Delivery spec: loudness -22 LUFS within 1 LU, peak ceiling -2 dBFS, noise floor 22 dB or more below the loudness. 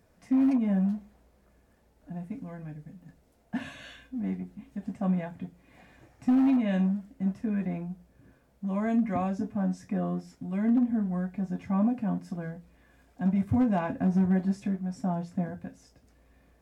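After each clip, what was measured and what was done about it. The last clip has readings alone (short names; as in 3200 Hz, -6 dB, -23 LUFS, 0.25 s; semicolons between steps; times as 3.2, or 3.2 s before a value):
clipped 0.4%; flat tops at -18.5 dBFS; loudness -29.0 LUFS; peak -18.5 dBFS; loudness target -22.0 LUFS
-> clip repair -18.5 dBFS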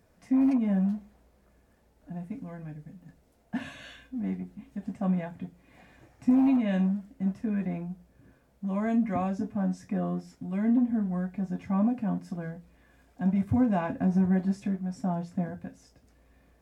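clipped 0.0%; loudness -29.0 LUFS; peak -14.0 dBFS; loudness target -22.0 LUFS
-> gain +7 dB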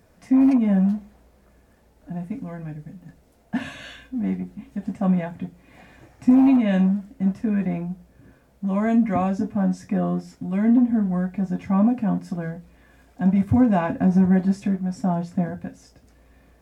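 loudness -22.0 LUFS; peak -7.0 dBFS; noise floor -58 dBFS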